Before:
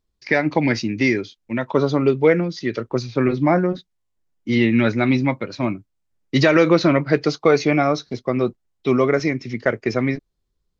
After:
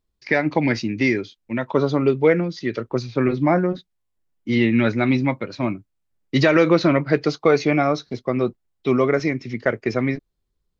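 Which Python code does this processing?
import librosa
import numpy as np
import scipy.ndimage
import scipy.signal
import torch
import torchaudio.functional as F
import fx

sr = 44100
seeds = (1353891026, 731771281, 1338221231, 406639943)

y = fx.peak_eq(x, sr, hz=5900.0, db=-3.0, octaves=0.77)
y = y * 10.0 ** (-1.0 / 20.0)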